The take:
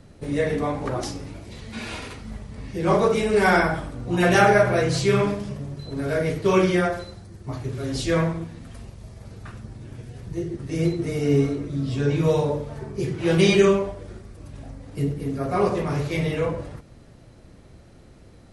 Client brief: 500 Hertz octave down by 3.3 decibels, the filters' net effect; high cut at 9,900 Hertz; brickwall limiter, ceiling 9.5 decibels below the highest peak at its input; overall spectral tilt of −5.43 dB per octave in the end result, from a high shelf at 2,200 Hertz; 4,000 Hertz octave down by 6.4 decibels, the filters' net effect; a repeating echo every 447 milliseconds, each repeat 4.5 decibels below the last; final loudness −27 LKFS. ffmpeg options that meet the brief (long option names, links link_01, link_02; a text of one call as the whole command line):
ffmpeg -i in.wav -af "lowpass=9900,equalizer=frequency=500:width_type=o:gain=-4,highshelf=frequency=2200:gain=-4.5,equalizer=frequency=4000:width_type=o:gain=-4,alimiter=limit=-15.5dB:level=0:latency=1,aecho=1:1:447|894|1341|1788|2235|2682|3129|3576|4023:0.596|0.357|0.214|0.129|0.0772|0.0463|0.0278|0.0167|0.01,volume=-1dB" out.wav